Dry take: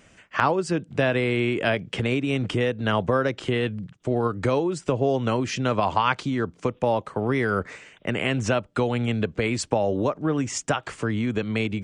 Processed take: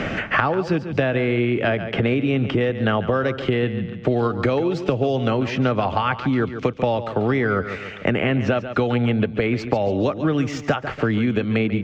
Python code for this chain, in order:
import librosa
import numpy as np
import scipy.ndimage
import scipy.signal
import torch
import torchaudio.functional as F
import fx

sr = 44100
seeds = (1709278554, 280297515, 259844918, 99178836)

p1 = scipy.signal.medfilt(x, 5)
p2 = fx.air_absorb(p1, sr, metres=190.0)
p3 = fx.notch(p2, sr, hz=990.0, q=8.8)
p4 = p3 + fx.echo_feedback(p3, sr, ms=141, feedback_pct=32, wet_db=-13, dry=0)
p5 = fx.band_squash(p4, sr, depth_pct=100)
y = p5 * 10.0 ** (3.0 / 20.0)